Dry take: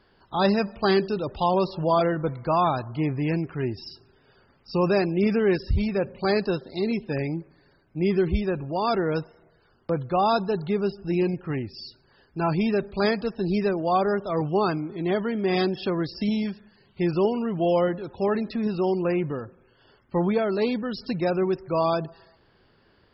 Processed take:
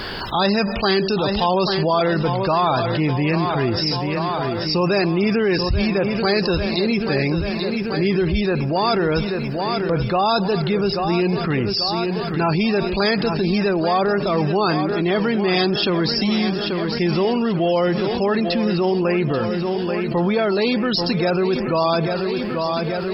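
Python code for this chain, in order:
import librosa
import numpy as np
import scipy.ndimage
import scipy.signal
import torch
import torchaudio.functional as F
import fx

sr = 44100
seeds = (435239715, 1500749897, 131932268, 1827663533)

y = fx.high_shelf(x, sr, hz=2000.0, db=9.5)
y = fx.echo_feedback(y, sr, ms=836, feedback_pct=57, wet_db=-12.5)
y = fx.env_flatten(y, sr, amount_pct=70)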